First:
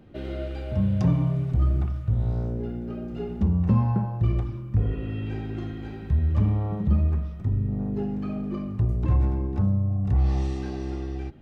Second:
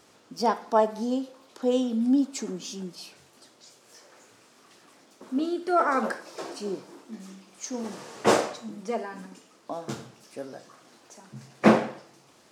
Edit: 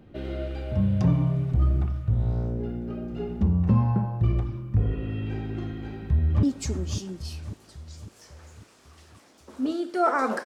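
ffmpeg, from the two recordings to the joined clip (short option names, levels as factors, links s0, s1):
-filter_complex "[0:a]apad=whole_dur=10.45,atrim=end=10.45,atrim=end=6.432[s0];[1:a]atrim=start=2.158:end=6.18[s1];[s0][s1]acrossfade=d=0.004:c1=hsin:c2=hsin,asplit=2[s2][s3];[s3]afade=t=in:st=5.74:d=0.01,afade=t=out:st=6.43:d=0.01,aecho=0:1:550|1100|1650|2200|2750|3300:0.375837|0.187919|0.0939594|0.0469797|0.0234898|0.0117449[s4];[s2][s4]amix=inputs=2:normalize=0"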